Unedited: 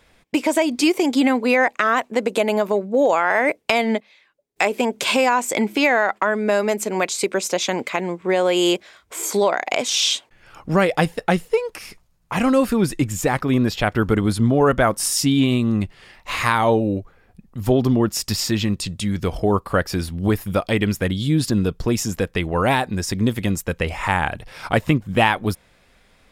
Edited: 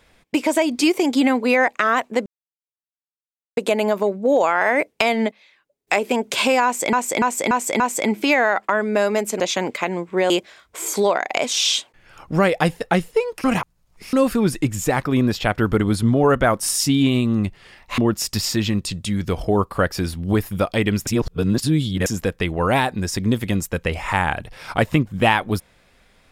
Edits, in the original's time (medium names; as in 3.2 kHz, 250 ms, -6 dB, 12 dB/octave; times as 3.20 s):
2.26 s: insert silence 1.31 s
5.33–5.62 s: loop, 5 plays
6.93–7.52 s: delete
8.42–8.67 s: delete
11.81–12.50 s: reverse
16.35–17.93 s: delete
21.02–22.01 s: reverse